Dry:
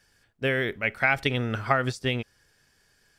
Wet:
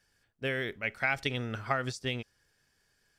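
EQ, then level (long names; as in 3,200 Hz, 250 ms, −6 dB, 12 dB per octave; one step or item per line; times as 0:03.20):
dynamic equaliser 6,000 Hz, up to +7 dB, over −45 dBFS, Q 0.92
−7.5 dB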